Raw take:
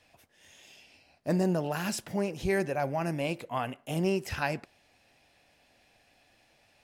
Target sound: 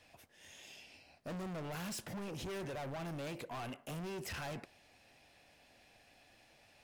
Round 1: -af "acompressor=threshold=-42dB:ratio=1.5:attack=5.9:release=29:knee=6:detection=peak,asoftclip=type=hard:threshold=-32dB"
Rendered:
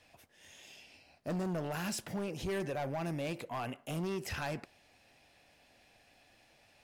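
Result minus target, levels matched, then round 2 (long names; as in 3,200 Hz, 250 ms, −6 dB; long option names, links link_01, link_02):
hard clipping: distortion −7 dB
-af "acompressor=threshold=-42dB:ratio=1.5:attack=5.9:release=29:knee=6:detection=peak,asoftclip=type=hard:threshold=-40.5dB"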